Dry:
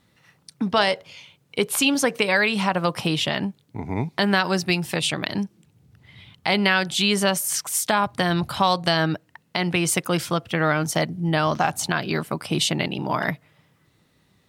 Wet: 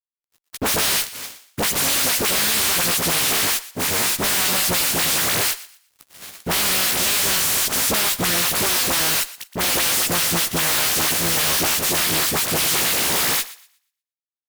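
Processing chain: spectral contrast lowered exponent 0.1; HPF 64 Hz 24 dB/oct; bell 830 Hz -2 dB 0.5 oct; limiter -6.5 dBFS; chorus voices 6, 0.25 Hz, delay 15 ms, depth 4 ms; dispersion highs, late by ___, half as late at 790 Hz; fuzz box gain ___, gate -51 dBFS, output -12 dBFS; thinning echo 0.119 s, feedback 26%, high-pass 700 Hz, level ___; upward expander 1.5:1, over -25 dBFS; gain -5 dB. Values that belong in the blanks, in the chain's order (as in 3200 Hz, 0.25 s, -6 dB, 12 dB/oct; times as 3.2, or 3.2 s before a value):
60 ms, 43 dB, -11.5 dB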